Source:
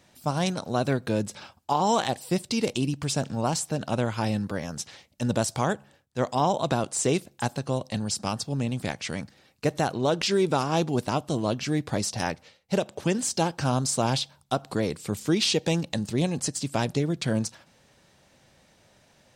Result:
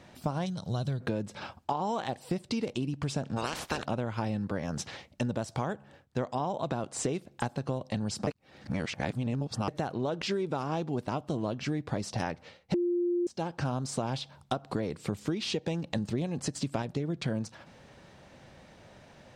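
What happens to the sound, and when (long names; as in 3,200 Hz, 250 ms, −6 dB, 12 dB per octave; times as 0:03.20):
0:00.46–0:01.01: gain on a spectral selection 200–2,900 Hz −12 dB
0:03.36–0:03.84: ceiling on every frequency bin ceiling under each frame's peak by 28 dB
0:08.27–0:09.68: reverse
0:12.74–0:13.27: beep over 350 Hz −10 dBFS
0:15.96–0:16.82: clip gain +4 dB
whole clip: low-pass filter 2,100 Hz 6 dB per octave; downward compressor 10 to 1, threshold −36 dBFS; level +7.5 dB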